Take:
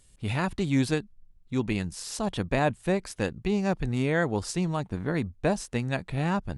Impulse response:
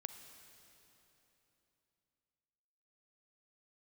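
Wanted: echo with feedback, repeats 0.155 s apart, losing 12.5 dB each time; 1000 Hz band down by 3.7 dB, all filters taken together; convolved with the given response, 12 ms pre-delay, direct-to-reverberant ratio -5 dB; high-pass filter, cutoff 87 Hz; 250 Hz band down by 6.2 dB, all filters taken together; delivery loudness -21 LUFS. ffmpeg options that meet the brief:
-filter_complex "[0:a]highpass=87,equalizer=f=250:t=o:g=-8.5,equalizer=f=1k:t=o:g=-4.5,aecho=1:1:155|310|465:0.237|0.0569|0.0137,asplit=2[a][b];[1:a]atrim=start_sample=2205,adelay=12[c];[b][c]afir=irnorm=-1:irlink=0,volume=8.5dB[d];[a][d]amix=inputs=2:normalize=0,volume=5dB"

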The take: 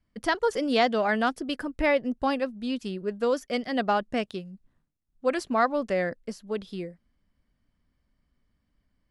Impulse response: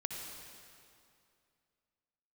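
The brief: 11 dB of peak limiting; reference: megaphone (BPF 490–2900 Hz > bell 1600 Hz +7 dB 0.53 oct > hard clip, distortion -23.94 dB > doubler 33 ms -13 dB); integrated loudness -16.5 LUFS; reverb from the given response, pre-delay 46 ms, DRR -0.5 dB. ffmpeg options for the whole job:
-filter_complex "[0:a]alimiter=limit=-20dB:level=0:latency=1,asplit=2[a][b];[1:a]atrim=start_sample=2205,adelay=46[c];[b][c]afir=irnorm=-1:irlink=0,volume=-0.5dB[d];[a][d]amix=inputs=2:normalize=0,highpass=490,lowpass=2.9k,equalizer=f=1.6k:t=o:w=0.53:g=7,asoftclip=type=hard:threshold=-19dB,asplit=2[e][f];[f]adelay=33,volume=-13dB[g];[e][g]amix=inputs=2:normalize=0,volume=13.5dB"

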